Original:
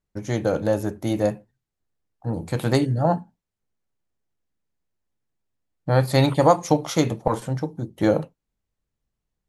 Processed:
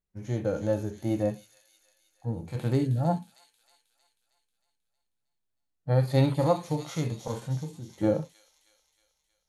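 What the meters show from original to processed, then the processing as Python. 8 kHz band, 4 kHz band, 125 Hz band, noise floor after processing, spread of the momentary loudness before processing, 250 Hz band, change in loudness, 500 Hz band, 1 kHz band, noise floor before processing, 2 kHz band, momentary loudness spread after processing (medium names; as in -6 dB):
-10.5 dB, -10.5 dB, -3.5 dB, -80 dBFS, 12 LU, -6.0 dB, -6.0 dB, -7.0 dB, -10.5 dB, -83 dBFS, -11.0 dB, 12 LU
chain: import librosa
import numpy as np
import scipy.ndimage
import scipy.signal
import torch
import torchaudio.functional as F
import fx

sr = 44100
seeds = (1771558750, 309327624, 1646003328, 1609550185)

y = fx.echo_wet_highpass(x, sr, ms=315, feedback_pct=55, hz=4400.0, wet_db=-4.5)
y = fx.hpss(y, sr, part='percussive', gain_db=-17)
y = y * 10.0 ** (-3.0 / 20.0)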